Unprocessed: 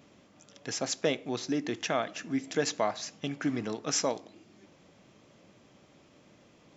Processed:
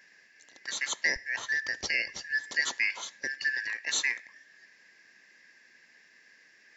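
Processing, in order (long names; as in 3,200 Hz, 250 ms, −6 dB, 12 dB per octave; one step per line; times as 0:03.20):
band-splitting scrambler in four parts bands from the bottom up 3142
high-pass filter 180 Hz 12 dB per octave, from 0:01.16 48 Hz, from 0:02.31 170 Hz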